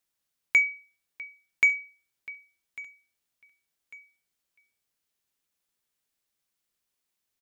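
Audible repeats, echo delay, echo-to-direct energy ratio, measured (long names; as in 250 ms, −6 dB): 2, 1,148 ms, −19.0 dB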